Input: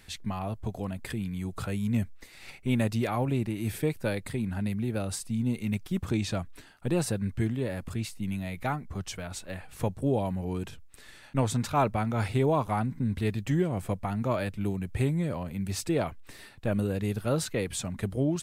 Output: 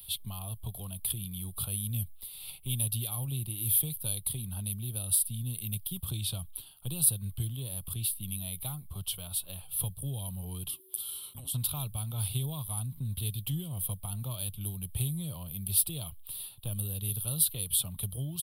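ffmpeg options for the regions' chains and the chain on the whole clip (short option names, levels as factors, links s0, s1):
-filter_complex "[0:a]asettb=1/sr,asplit=3[s0][s1][s2];[s0]atrim=end=10.694[s3];[s1]atrim=start=10.69:end=11.54,asetpts=PTS-STARTPTS,afade=t=in:d=0.004:c=qsin,afade=t=out:st=0.846:d=0.004:c=qsin,bass=f=250:g=-5,treble=f=4000:g=9,afreqshift=-380,acompressor=threshold=0.0126:ratio=5:attack=3.2:release=140:knee=1:detection=peak[s4];[s2]atrim=start=11.536[s5];[s3][s4]acrossfade=d=0.004:c1=hsin:c2=qsin[s6];[s6][s5]acrossfade=d=0.004:c1=qsin:c2=hsin,highshelf=f=2800:g=10.5,acrossover=split=180|3000[s7][s8][s9];[s8]acompressor=threshold=0.0178:ratio=6[s10];[s7][s10][s9]amix=inputs=3:normalize=0,firequalizer=gain_entry='entry(150,0);entry(220,-12);entry(1100,-5);entry(1800,-25);entry(3200,5);entry(6600,-22);entry(10000,13)':delay=0.05:min_phase=1,volume=0.75"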